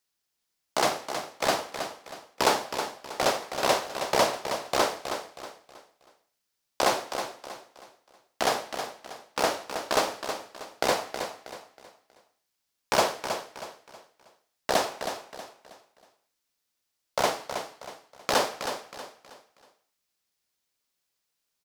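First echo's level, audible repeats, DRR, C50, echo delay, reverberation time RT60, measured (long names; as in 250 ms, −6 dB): −8.5 dB, 3, no reverb audible, no reverb audible, 319 ms, no reverb audible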